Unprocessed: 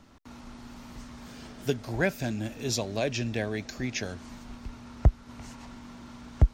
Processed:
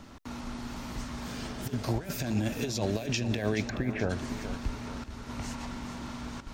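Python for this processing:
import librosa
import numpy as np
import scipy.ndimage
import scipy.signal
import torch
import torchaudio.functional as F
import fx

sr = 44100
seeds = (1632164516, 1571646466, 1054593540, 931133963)

y = fx.lowpass(x, sr, hz=fx.line((3.68, 2600.0), (4.09, 1400.0)), slope=24, at=(3.68, 4.09), fade=0.02)
y = fx.over_compress(y, sr, threshold_db=-33.0, ratio=-0.5)
y = fx.echo_feedback(y, sr, ms=427, feedback_pct=48, wet_db=-11)
y = F.gain(torch.from_numpy(y), 2.0).numpy()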